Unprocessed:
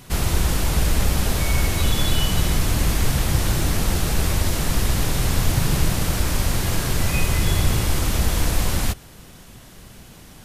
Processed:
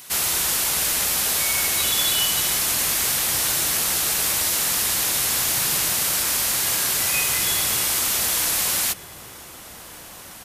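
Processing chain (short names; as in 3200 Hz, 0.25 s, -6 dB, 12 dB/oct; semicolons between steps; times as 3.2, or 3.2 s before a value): HPF 1400 Hz 6 dB/oct; high shelf 6600 Hz +8.5 dB; outdoor echo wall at 260 m, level -10 dB; gain +3.5 dB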